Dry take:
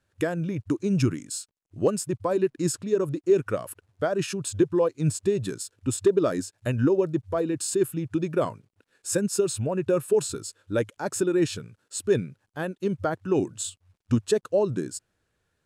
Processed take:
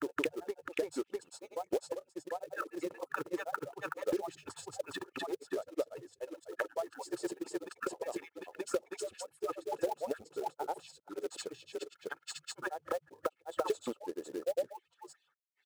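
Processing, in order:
harmonic-percussive split with one part muted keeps percussive
high-pass filter 110 Hz 6 dB per octave
mains-hum notches 50/100/150 Hz
comb filter 2.3 ms, depth 55%
envelope filter 630–3,500 Hz, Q 3.8, down, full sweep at −30 dBFS
downward compressor 6 to 1, threshold −49 dBFS, peak gain reduction 24.5 dB
floating-point word with a short mantissa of 2 bits
granular cloud 100 ms, grains 20 per second, spray 709 ms, pitch spread up and down by 0 semitones
level +17 dB

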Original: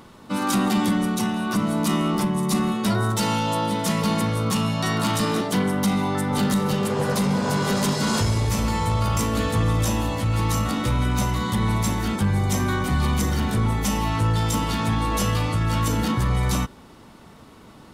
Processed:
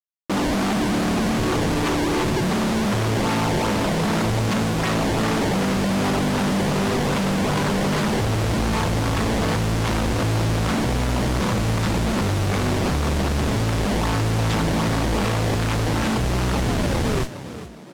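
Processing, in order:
in parallel at −2 dB: downward compressor, threshold −33 dBFS, peak gain reduction 14.5 dB
0:01.38–0:02.42: on the sum: phaser with its sweep stopped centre 1,000 Hz, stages 8
0:15.35–0:17.25: sound drawn into the spectrogram fall 360–3,800 Hz −31 dBFS
comparator with hysteresis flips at −27.5 dBFS
sample-and-hold swept by an LFO 20×, swing 160% 2.6 Hz
noise that follows the level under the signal 10 dB
high-frequency loss of the air 55 metres
on a send: echo with shifted repeats 409 ms, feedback 42%, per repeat +55 Hz, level −13.5 dB

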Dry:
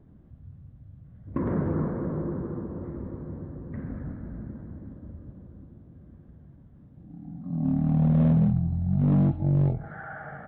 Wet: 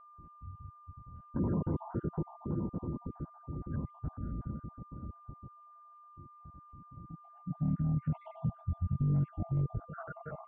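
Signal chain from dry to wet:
time-frequency cells dropped at random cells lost 60%
brickwall limiter −23.5 dBFS, peak gain reduction 8.5 dB
formants moved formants −3 semitones
steady tone 1,200 Hz −53 dBFS
high-frequency loss of the air 180 metres

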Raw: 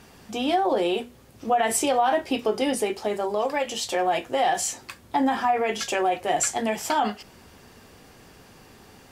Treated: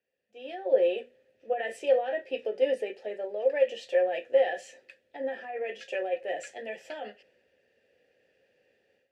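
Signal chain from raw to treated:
automatic gain control gain up to 11.5 dB
formant filter e
multiband upward and downward expander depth 40%
level −6.5 dB

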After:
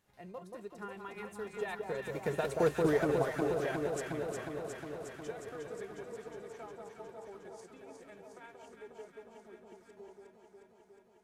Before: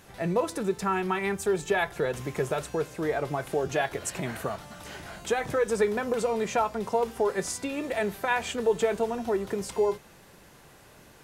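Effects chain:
source passing by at 0:02.77, 18 m/s, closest 3.7 metres
transient designer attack +3 dB, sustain −6 dB
delay that swaps between a low-pass and a high-pass 180 ms, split 1,200 Hz, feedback 86%, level −3 dB

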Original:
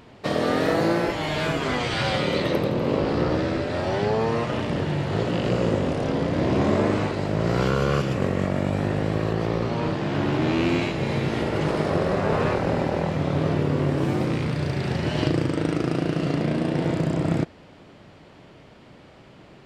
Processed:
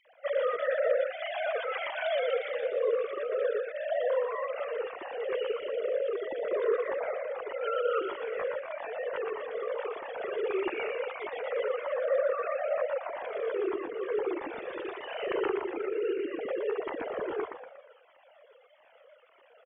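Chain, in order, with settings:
three sine waves on the formant tracks
on a send: echo with shifted repeats 119 ms, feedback 44%, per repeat +42 Hz, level −4 dB
on the sum: flanger whose copies keep moving one way falling 1.6 Hz
level −5 dB

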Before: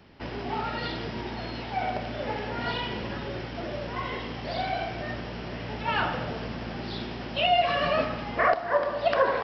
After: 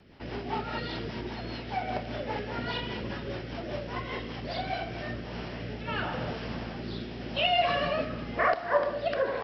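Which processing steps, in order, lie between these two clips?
floating-point word with a short mantissa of 8 bits
rotating-speaker cabinet horn 5 Hz, later 0.9 Hz, at 0:04.61

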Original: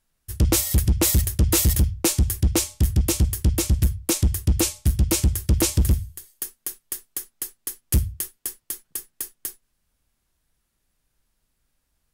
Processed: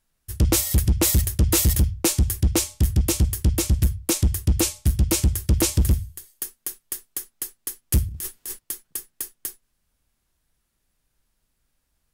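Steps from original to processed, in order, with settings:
0:08.08–0:08.59: transient designer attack −8 dB, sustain +10 dB

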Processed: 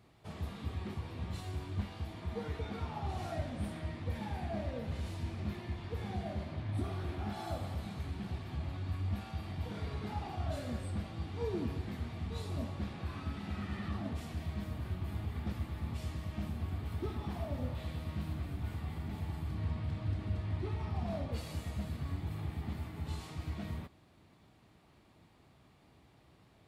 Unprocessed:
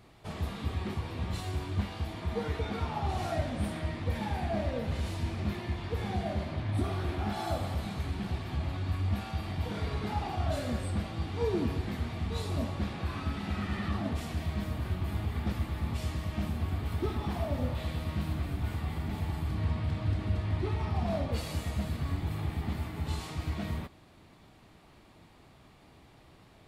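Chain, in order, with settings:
high-pass filter 57 Hz
low-shelf EQ 240 Hz +3.5 dB
level −7.5 dB

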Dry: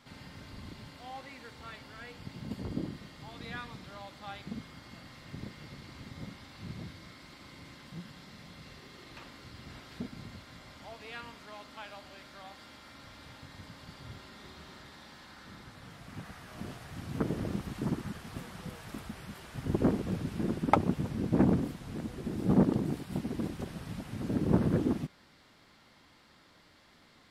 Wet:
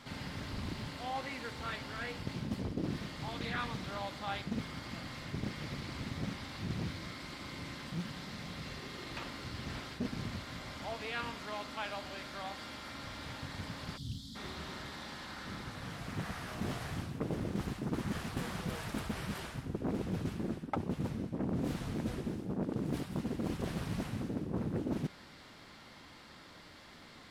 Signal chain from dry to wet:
reversed playback
downward compressor 20 to 1, threshold −38 dBFS, peak gain reduction 23 dB
reversed playback
gain on a spectral selection 0:13.97–0:14.36, 290–3,200 Hz −26 dB
highs frequency-modulated by the lows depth 0.54 ms
level +6.5 dB

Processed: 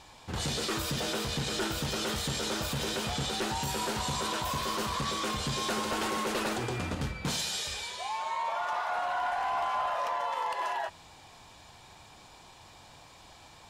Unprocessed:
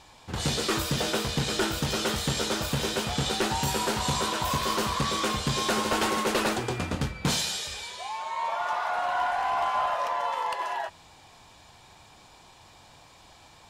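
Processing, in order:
brickwall limiter −24 dBFS, peak gain reduction 7.5 dB

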